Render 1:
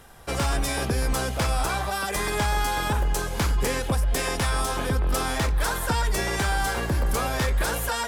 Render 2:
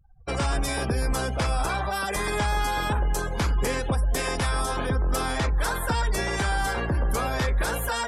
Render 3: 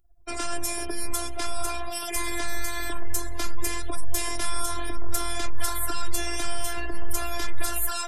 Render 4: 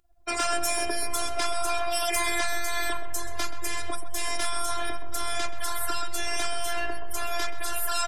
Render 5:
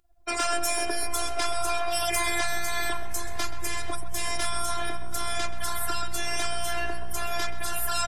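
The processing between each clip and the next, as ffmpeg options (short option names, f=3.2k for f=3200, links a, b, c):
-filter_complex "[0:a]afftfilt=real='re*gte(hypot(re,im),0.00562)':imag='im*gte(hypot(re,im),0.00562)':win_size=1024:overlap=0.75,afftdn=nr=35:nf=-38,asplit=2[a][b];[b]alimiter=limit=-23.5dB:level=0:latency=1,volume=-1.5dB[c];[a][c]amix=inputs=2:normalize=0,volume=-3.5dB"
-af "crystalizer=i=2:c=0,afftfilt=real='hypot(re,im)*cos(PI*b)':imag='0':win_size=512:overlap=0.75,asubboost=boost=3.5:cutoff=110,volume=-1.5dB"
-filter_complex "[0:a]asplit=2[a][b];[b]adelay=129,lowpass=f=1.7k:p=1,volume=-6.5dB,asplit=2[c][d];[d]adelay=129,lowpass=f=1.7k:p=1,volume=0.54,asplit=2[e][f];[f]adelay=129,lowpass=f=1.7k:p=1,volume=0.54,asplit=2[g][h];[h]adelay=129,lowpass=f=1.7k:p=1,volume=0.54,asplit=2[i][j];[j]adelay=129,lowpass=f=1.7k:p=1,volume=0.54,asplit=2[k][l];[l]adelay=129,lowpass=f=1.7k:p=1,volume=0.54,asplit=2[m][n];[n]adelay=129,lowpass=f=1.7k:p=1,volume=0.54[o];[c][e][g][i][k][m][o]amix=inputs=7:normalize=0[p];[a][p]amix=inputs=2:normalize=0,acompressor=threshold=-18dB:ratio=6,asplit=2[q][r];[r]highpass=f=720:p=1,volume=12dB,asoftclip=type=tanh:threshold=-7dB[s];[q][s]amix=inputs=2:normalize=0,lowpass=f=6.6k:p=1,volume=-6dB"
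-filter_complex "[0:a]asplit=5[a][b][c][d][e];[b]adelay=487,afreqshift=61,volume=-21.5dB[f];[c]adelay=974,afreqshift=122,volume=-26.9dB[g];[d]adelay=1461,afreqshift=183,volume=-32.2dB[h];[e]adelay=1948,afreqshift=244,volume=-37.6dB[i];[a][f][g][h][i]amix=inputs=5:normalize=0"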